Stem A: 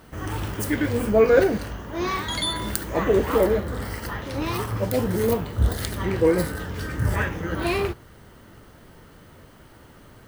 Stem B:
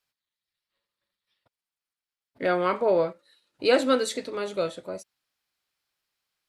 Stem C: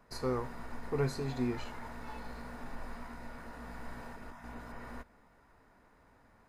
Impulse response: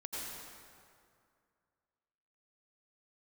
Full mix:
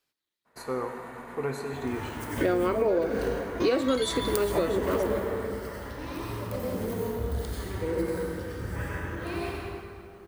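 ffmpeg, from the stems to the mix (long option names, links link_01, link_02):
-filter_complex "[0:a]adelay=1600,volume=-5dB,asplit=2[link_01][link_02];[link_02]volume=-4.5dB[link_03];[1:a]equalizer=frequency=340:width=1.6:gain=10.5,volume=1dB,asplit=2[link_04][link_05];[2:a]highpass=frequency=350:poles=1,equalizer=frequency=5100:width_type=o:width=0.42:gain=-14.5,adelay=450,volume=3dB,asplit=2[link_06][link_07];[link_07]volume=-6dB[link_08];[link_05]apad=whole_len=523794[link_09];[link_01][link_09]sidechaingate=range=-33dB:threshold=-57dB:ratio=16:detection=peak[link_10];[link_10][link_06]amix=inputs=2:normalize=0,agate=range=-33dB:threshold=-58dB:ratio=3:detection=peak,acompressor=threshold=-26dB:ratio=6,volume=0dB[link_11];[3:a]atrim=start_sample=2205[link_12];[link_03][link_08]amix=inputs=2:normalize=0[link_13];[link_13][link_12]afir=irnorm=-1:irlink=0[link_14];[link_04][link_11][link_14]amix=inputs=3:normalize=0,acompressor=threshold=-22dB:ratio=6"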